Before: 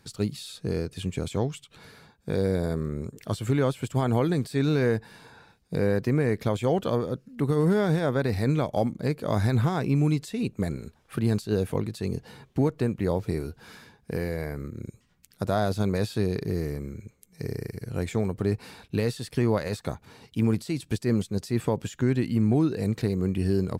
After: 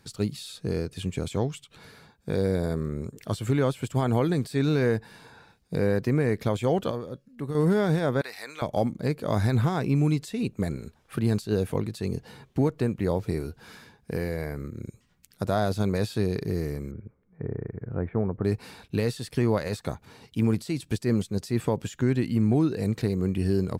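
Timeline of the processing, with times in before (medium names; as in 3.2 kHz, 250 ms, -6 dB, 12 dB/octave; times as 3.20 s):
6.91–7.55 s: feedback comb 560 Hz, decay 0.18 s
8.21–8.62 s: high-pass 1.1 kHz
16.91–18.45 s: inverse Chebyshev low-pass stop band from 6.7 kHz, stop band 70 dB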